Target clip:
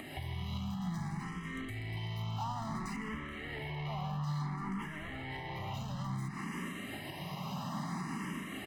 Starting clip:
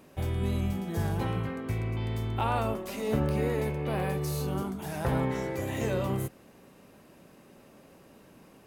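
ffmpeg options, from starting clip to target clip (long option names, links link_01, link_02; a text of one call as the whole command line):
ffmpeg -i in.wav -filter_complex "[0:a]asplit=2[link_01][link_02];[link_02]highpass=frequency=720:poles=1,volume=33dB,asoftclip=type=tanh:threshold=-16dB[link_03];[link_01][link_03]amix=inputs=2:normalize=0,lowpass=frequency=2300:poles=1,volume=-6dB,equalizer=frequency=160:width=1.3:gain=15,acrossover=split=100|1100|4500[link_04][link_05][link_06][link_07];[link_04]acompressor=threshold=-39dB:ratio=4[link_08];[link_05]acompressor=threshold=-38dB:ratio=4[link_09];[link_06]acompressor=threshold=-42dB:ratio=4[link_10];[link_07]acompressor=threshold=-52dB:ratio=4[link_11];[link_08][link_09][link_10][link_11]amix=inputs=4:normalize=0,asettb=1/sr,asplit=3[link_12][link_13][link_14];[link_12]atrim=end=2.964[link_15];[link_13]atrim=start=2.96:end=5.74,asetpts=PTS-STARTPTS,afade=type=in:duration=0.004:curve=qsin,afade=type=out:start_time=2.776:duration=0.004:curve=qsin,bass=frequency=250:gain=-6,treble=frequency=4000:gain=-11[link_16];[link_14]atrim=start=5.736[link_17];[link_15][link_16]acrossfade=duration=0.004:curve1=hsin:curve2=qsin[link_18];[link_18][link_17]acrossfade=duration=0.004:curve1=qsin:curve2=hsin,acompressor=threshold=-44dB:ratio=4,aecho=1:1:1:0.79,asplit=2[link_19][link_20];[link_20]adelay=157.4,volume=-13dB,highshelf=frequency=4000:gain=-3.54[link_21];[link_19][link_21]amix=inputs=2:normalize=0,alimiter=level_in=14.5dB:limit=-24dB:level=0:latency=1:release=459,volume=-14.5dB,asplit=2[link_22][link_23];[link_23]afreqshift=0.58[link_24];[link_22][link_24]amix=inputs=2:normalize=1,volume=11dB" out.wav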